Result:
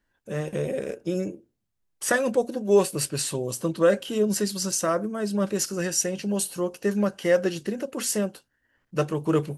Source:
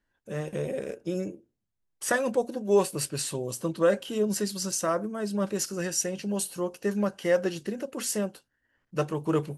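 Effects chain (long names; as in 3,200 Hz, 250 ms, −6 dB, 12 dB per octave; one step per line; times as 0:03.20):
dynamic equaliser 900 Hz, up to −4 dB, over −41 dBFS, Q 2.5
level +3.5 dB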